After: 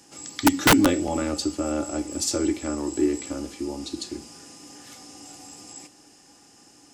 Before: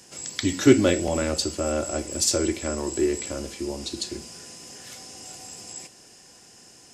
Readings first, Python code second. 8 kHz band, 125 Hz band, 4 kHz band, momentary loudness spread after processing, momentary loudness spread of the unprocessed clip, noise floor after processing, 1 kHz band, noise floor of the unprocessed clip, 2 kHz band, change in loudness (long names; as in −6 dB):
−2.0 dB, −2.5 dB, 0.0 dB, 24 LU, 20 LU, −54 dBFS, +7.0 dB, −51 dBFS, +4.5 dB, 0.0 dB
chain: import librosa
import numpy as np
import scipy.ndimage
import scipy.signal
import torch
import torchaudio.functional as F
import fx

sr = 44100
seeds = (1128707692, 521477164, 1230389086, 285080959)

y = fx.small_body(x, sr, hz=(290.0, 830.0, 1200.0), ring_ms=90, db=14)
y = (np.mod(10.0 ** (5.0 / 20.0) * y + 1.0, 2.0) - 1.0) / 10.0 ** (5.0 / 20.0)
y = y * librosa.db_to_amplitude(-4.0)